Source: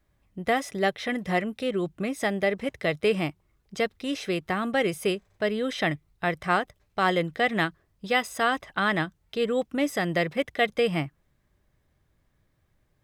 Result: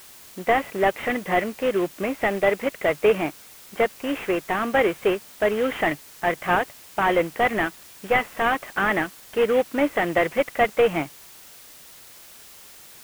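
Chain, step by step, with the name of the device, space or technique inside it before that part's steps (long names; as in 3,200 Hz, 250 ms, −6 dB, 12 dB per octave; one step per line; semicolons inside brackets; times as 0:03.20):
army field radio (band-pass filter 310–3,300 Hz; variable-slope delta modulation 16 kbit/s; white noise bed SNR 22 dB)
level +7.5 dB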